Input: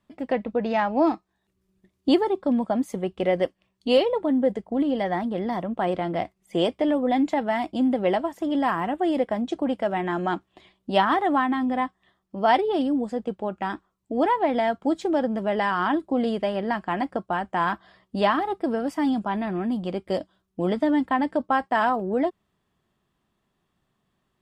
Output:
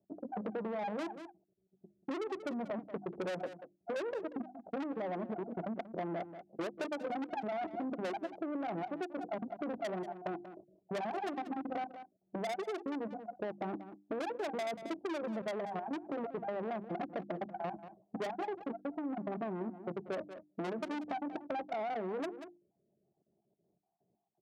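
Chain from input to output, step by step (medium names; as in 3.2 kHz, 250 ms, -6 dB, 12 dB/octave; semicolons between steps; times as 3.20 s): random holes in the spectrogram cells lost 34%; Chebyshev low-pass 750 Hz, order 5; comb of notches 250 Hz; level held to a coarse grid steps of 12 dB; valve stage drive 39 dB, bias 0.4; high-pass 180 Hz 12 dB/octave; hum notches 50/100/150/200/250/300/350 Hz; delay 186 ms -16 dB; compression, threshold -45 dBFS, peak gain reduction 8.5 dB; trim +10.5 dB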